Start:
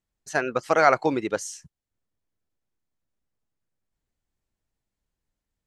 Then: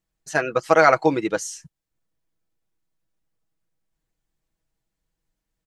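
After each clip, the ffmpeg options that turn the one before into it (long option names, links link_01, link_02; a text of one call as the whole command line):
ffmpeg -i in.wav -af "aecho=1:1:6.2:0.53,volume=2dB" out.wav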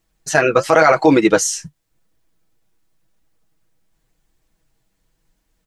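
ffmpeg -i in.wav -af "flanger=delay=2.4:depth=8.8:regen=-46:speed=0.91:shape=triangular,alimiter=level_in=17.5dB:limit=-1dB:release=50:level=0:latency=1,volume=-1dB" out.wav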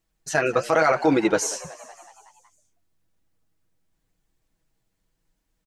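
ffmpeg -i in.wav -filter_complex "[0:a]asplit=7[link_01][link_02][link_03][link_04][link_05][link_06][link_07];[link_02]adelay=186,afreqshift=89,volume=-18.5dB[link_08];[link_03]adelay=372,afreqshift=178,volume=-22.7dB[link_09];[link_04]adelay=558,afreqshift=267,volume=-26.8dB[link_10];[link_05]adelay=744,afreqshift=356,volume=-31dB[link_11];[link_06]adelay=930,afreqshift=445,volume=-35.1dB[link_12];[link_07]adelay=1116,afreqshift=534,volume=-39.3dB[link_13];[link_01][link_08][link_09][link_10][link_11][link_12][link_13]amix=inputs=7:normalize=0,volume=-7.5dB" out.wav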